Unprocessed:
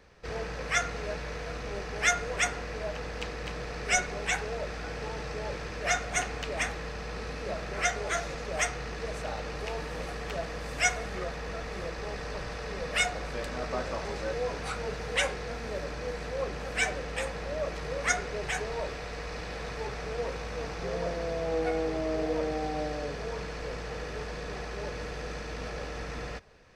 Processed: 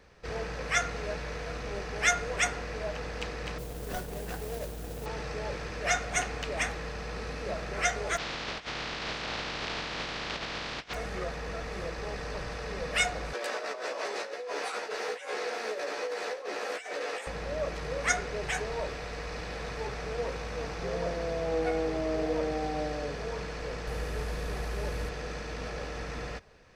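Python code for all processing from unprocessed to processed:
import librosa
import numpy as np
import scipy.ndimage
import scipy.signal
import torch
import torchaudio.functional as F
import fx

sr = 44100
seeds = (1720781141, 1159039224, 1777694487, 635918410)

y = fx.chain(x, sr, fx.median_filter(points=41),
    fx.mod_noise(seeds[0], snr_db=12), at=(3.58, 5.06))
y = fx.spec_flatten(y, sr, power=0.23, at=(8.16, 10.93), fade=0.02)
y = fx.lowpass(y, sr, hz=4500.0, slope=24, at=(8.16, 10.93), fade=0.02)
y = fx.over_compress(y, sr, threshold_db=-37.0, ratio=-0.5, at=(8.16, 10.93), fade=0.02)
y = fx.chain(y, sr, fx.highpass(hz=340.0, slope=24),
    fx.over_compress(threshold_db=-38.0, ratio=-1.0),
    fx.doubler(ms=14.0, db=-2.0), at=(13.33, 17.27))
y = fx.chain(y, sr, fx.delta_mod(bps=64000, step_db=-43.5),
    fx.low_shelf(hz=95.0, db=9.0), at=(23.87, 25.09))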